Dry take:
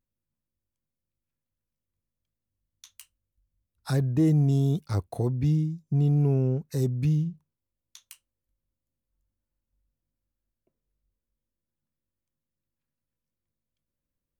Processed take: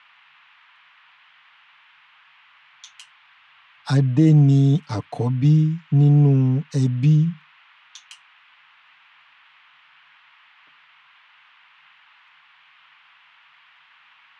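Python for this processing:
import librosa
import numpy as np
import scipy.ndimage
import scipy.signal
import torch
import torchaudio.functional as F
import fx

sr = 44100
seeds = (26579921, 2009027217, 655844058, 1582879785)

y = fx.cabinet(x, sr, low_hz=120.0, low_slope=24, high_hz=7400.0, hz=(240.0, 370.0, 960.0, 3100.0), db=(5, -8, 4, 7))
y = y + 0.78 * np.pad(y, (int(6.8 * sr / 1000.0), 0))[:len(y)]
y = fx.dmg_noise_band(y, sr, seeds[0], low_hz=920.0, high_hz=3100.0, level_db=-58.0)
y = F.gain(torch.from_numpy(y), 4.0).numpy()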